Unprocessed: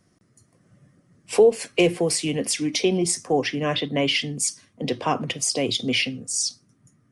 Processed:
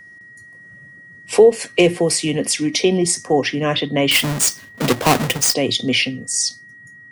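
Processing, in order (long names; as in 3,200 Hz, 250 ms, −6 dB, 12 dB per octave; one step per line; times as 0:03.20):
0:04.11–0:05.54: each half-wave held at its own peak
steady tone 1,900 Hz −45 dBFS
level +5 dB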